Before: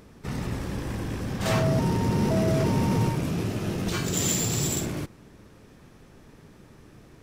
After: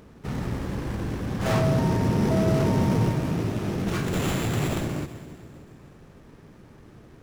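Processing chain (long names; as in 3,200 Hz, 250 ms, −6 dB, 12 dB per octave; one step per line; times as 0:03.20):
echo with a time of its own for lows and highs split 750 Hz, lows 291 ms, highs 192 ms, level −13.5 dB
windowed peak hold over 9 samples
level +1.5 dB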